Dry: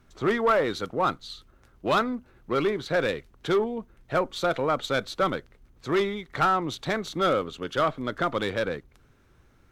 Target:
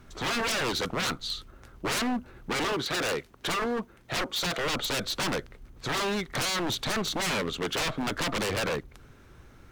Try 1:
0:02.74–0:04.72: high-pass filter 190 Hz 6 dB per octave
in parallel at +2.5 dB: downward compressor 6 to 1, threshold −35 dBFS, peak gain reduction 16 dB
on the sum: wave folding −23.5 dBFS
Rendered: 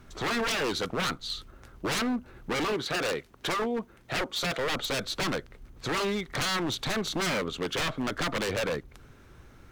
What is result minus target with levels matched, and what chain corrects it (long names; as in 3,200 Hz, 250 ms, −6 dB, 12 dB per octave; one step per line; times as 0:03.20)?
downward compressor: peak gain reduction +7.5 dB
0:02.74–0:04.72: high-pass filter 190 Hz 6 dB per octave
in parallel at +2.5 dB: downward compressor 6 to 1, threshold −26 dBFS, peak gain reduction 8.5 dB
on the sum: wave folding −23.5 dBFS